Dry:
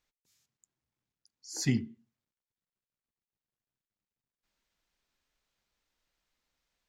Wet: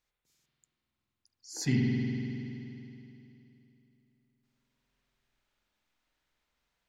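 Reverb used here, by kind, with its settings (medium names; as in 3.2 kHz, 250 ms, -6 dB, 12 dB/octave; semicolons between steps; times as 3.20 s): spring tank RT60 3.1 s, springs 47 ms, chirp 30 ms, DRR -3.5 dB; trim -2 dB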